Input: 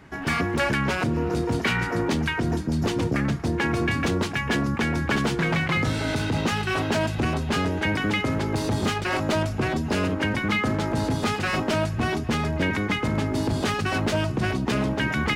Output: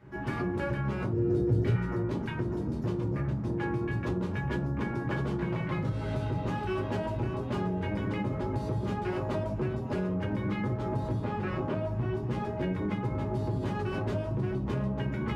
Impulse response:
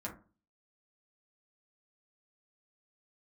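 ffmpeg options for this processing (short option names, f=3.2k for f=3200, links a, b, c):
-filter_complex "[0:a]asettb=1/sr,asplit=3[a][b][c];[a]atrim=end=11.204[d];[b]atrim=start=11.2:end=12.15,asetpts=PTS-STARTPTS,afade=t=in:d=0.004:c=qsin,afade=t=out:st=0.946:d=0.004:c=qsin,acrossover=split=3400[e][f];[f]acompressor=threshold=-47dB:ratio=4:attack=1:release=60[g];[e][g]amix=inputs=2:normalize=0[h];[c]atrim=start=12.146[i];[d][h]acrossfade=d=0.004:c1=hsin:c2=qsin[j];[j][i]acrossfade=d=0.004:c1=qsin:c2=hsin,equalizer=f=7.7k:w=0.37:g=-9.5,bandreject=f=740:w=12[k];[1:a]atrim=start_sample=2205,asetrate=26019,aresample=44100[l];[k][l]afir=irnorm=-1:irlink=0,acompressor=threshold=-20dB:ratio=6,asettb=1/sr,asplit=3[m][n][o];[m]atrim=end=1.134[p];[n]atrim=start=1.13:end=1.76,asetpts=PTS-STARTPTS,afade=t=in:d=0.004:c=qsin,afade=t=out:st=0.626:d=0.004:c=qsin,equalizer=f=100:t=o:w=0.67:g=10,equalizer=f=400:t=o:w=0.67:g=6,equalizer=f=1k:t=o:w=0.67:g=-10,equalizer=f=2.5k:t=o:w=0.67:g=-5[q];[o]atrim=start=1.756[r];[p][q]acrossfade=d=0.004:c1=hsin:c2=qsin[s];[s][r]acrossfade=d=0.004:c1=qsin:c2=hsin,volume=-7.5dB"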